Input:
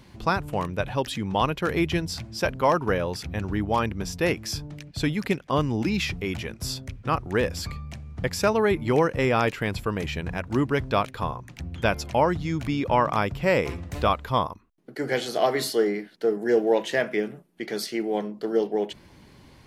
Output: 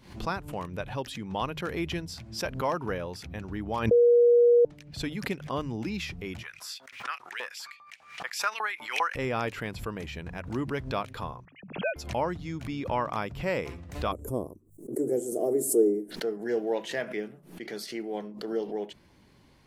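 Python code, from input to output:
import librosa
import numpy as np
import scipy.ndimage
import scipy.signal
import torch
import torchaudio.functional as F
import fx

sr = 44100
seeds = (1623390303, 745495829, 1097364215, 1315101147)

y = fx.filter_lfo_highpass(x, sr, shape='saw_up', hz=5.0, low_hz=840.0, high_hz=2900.0, q=2.9, at=(6.42, 9.15), fade=0.02)
y = fx.sine_speech(y, sr, at=(11.45, 11.96))
y = fx.curve_eq(y, sr, hz=(170.0, 370.0, 600.0, 940.0, 1700.0, 2500.0, 4100.0, 7900.0, 13000.0), db=(0, 12, 1, -15, -23, -25, -29, 13, 9), at=(14.11, 16.1), fade=0.02)
y = fx.edit(y, sr, fx.bleep(start_s=3.91, length_s=0.74, hz=478.0, db=-7.5), tone=tone)
y = fx.hum_notches(y, sr, base_hz=50, count=3)
y = fx.pre_swell(y, sr, db_per_s=110.0)
y = y * 10.0 ** (-8.0 / 20.0)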